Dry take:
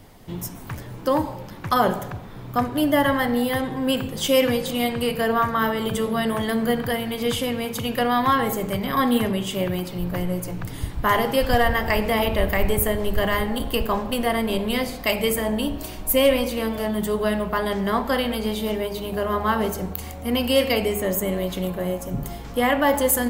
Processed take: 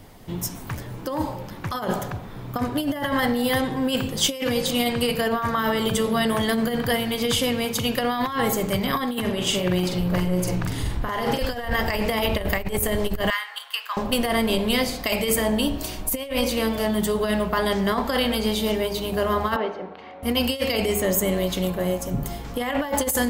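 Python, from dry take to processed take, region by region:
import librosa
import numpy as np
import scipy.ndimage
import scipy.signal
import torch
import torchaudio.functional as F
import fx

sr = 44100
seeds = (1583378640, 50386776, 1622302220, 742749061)

y = fx.chain(x, sr, fx.over_compress(threshold_db=-26.0, ratio=-1.0),
    fx.high_shelf(hz=11000.0, db=-9.0),
    fx.doubler(ms=44.0, db=-4.0), at=(9.2, 11.39))
y = fx.chain(y, sr, fx.highpass(hz=1200.0, slope=24),
    fx.high_shelf(hz=4600.0, db=-11.5), at=(13.3, 13.97))
y = fx.chain(y, sr, fx.bandpass_edges(low_hz=380.0, high_hz=4500.0),
    fx.air_absorb(metres=310.0), at=(19.56, 20.23))
y = fx.over_compress(y, sr, threshold_db=-22.0, ratio=-0.5)
y = fx.dynamic_eq(y, sr, hz=5400.0, q=0.77, threshold_db=-44.0, ratio=4.0, max_db=6)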